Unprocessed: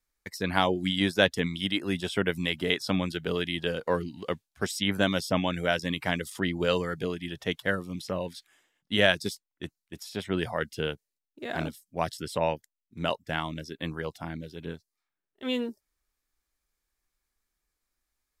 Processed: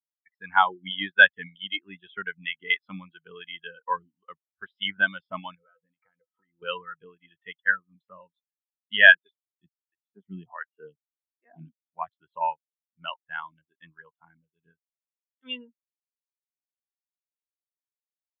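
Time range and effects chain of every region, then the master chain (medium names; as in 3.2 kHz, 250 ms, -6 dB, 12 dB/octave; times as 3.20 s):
5.55–6.62 s: compression 8:1, threshold -36 dBFS + distance through air 370 m + small resonant body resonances 500/1300 Hz, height 15 dB, ringing for 90 ms
9.14–11.83 s: dynamic bell 220 Hz, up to +6 dB, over -42 dBFS, Q 1 + lamp-driven phase shifter 1.5 Hz
whole clip: steep low-pass 5 kHz; high-order bell 1.7 kHz +12.5 dB 2.4 oct; spectral contrast expander 2.5:1; trim -4.5 dB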